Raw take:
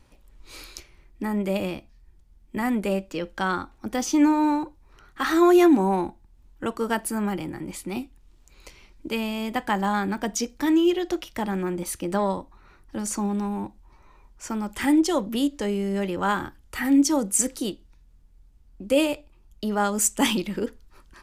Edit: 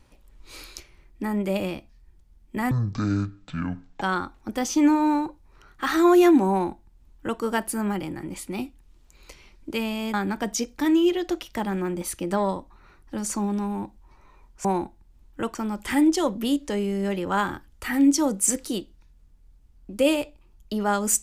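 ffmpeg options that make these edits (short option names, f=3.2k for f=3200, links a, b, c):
-filter_complex "[0:a]asplit=6[a][b][c][d][e][f];[a]atrim=end=2.714[g];[b]atrim=start=2.71:end=3.39,asetpts=PTS-STARTPTS,asetrate=22932,aresample=44100,atrim=end_sample=57669,asetpts=PTS-STARTPTS[h];[c]atrim=start=3.386:end=9.512[i];[d]atrim=start=9.948:end=14.462[j];[e]atrim=start=5.878:end=6.782[k];[f]atrim=start=14.458[l];[g][h]acrossfade=d=0.004:c1=hsin:c2=hsin[m];[m][i]acrossfade=d=0.004:c1=hsin:c2=hsin[n];[n][j]acrossfade=d=0.004:c1=hsin:c2=hsin[o];[o][k]acrossfade=d=0.004:c1=hsin:c2=hsin[p];[p][l]acrossfade=d=0.004:c1=hsin:c2=hsin"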